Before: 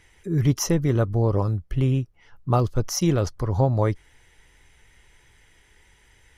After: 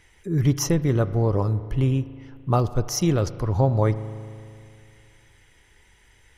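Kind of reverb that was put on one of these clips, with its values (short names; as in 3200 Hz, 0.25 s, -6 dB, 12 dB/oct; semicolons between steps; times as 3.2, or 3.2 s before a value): spring tank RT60 2.4 s, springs 37 ms, chirp 35 ms, DRR 14 dB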